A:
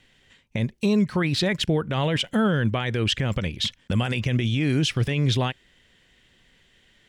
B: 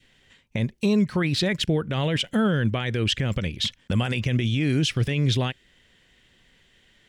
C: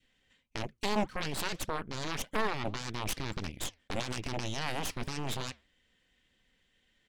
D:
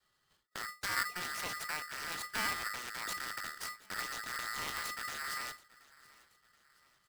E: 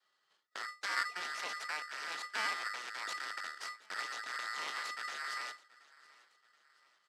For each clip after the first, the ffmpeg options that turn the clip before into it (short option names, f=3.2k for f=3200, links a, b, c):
-af "adynamicequalizer=threshold=0.00794:dfrequency=930:dqfactor=1.3:tfrequency=930:tqfactor=1.3:attack=5:release=100:ratio=0.375:range=2.5:mode=cutabove:tftype=bell"
-af "aecho=1:1:3.9:0.31,aeval=exprs='0.266*(cos(1*acos(clip(val(0)/0.266,-1,1)))-cos(1*PI/2))+0.133*(cos(3*acos(clip(val(0)/0.266,-1,1)))-cos(3*PI/2))+0.0473*(cos(6*acos(clip(val(0)/0.266,-1,1)))-cos(6*PI/2))':c=same,flanger=delay=0.2:depth=7.1:regen=-88:speed=1.7:shape=triangular,volume=-2.5dB"
-af "afreqshift=-380,aecho=1:1:728|1456|2184:0.0841|0.037|0.0163,aeval=exprs='val(0)*sgn(sin(2*PI*1600*n/s))':c=same,volume=-5dB"
-af "highpass=440,lowpass=6k"